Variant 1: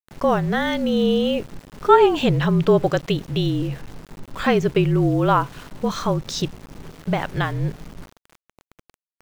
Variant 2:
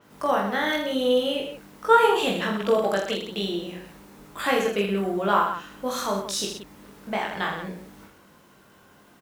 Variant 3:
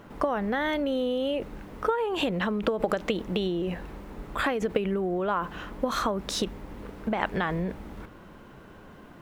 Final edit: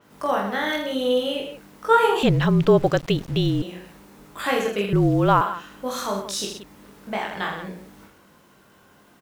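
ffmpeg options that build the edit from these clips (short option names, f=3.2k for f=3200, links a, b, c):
-filter_complex "[0:a]asplit=2[a][b];[1:a]asplit=3[c][d][e];[c]atrim=end=2.232[f];[a]atrim=start=2.228:end=3.622[g];[d]atrim=start=3.618:end=4.932[h];[b]atrim=start=4.928:end=5.412[i];[e]atrim=start=5.408[j];[f][g]acrossfade=d=0.004:c1=hsin:c2=hsin[k];[k][h]acrossfade=d=0.004:c1=hsin:c2=hsin[l];[l][i]acrossfade=d=0.004:c1=hsin:c2=hsin[m];[m][j]acrossfade=d=0.004:c1=hsin:c2=hsin"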